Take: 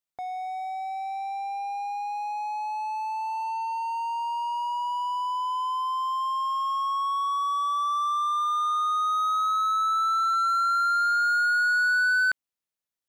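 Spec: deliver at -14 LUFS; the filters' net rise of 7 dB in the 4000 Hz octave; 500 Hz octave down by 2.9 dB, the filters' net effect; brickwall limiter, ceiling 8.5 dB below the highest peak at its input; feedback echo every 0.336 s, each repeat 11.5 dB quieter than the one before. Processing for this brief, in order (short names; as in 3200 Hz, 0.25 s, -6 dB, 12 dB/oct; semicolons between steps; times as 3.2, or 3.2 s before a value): bell 500 Hz -7 dB; bell 4000 Hz +8 dB; limiter -25.5 dBFS; feedback echo 0.336 s, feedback 27%, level -11.5 dB; gain +16 dB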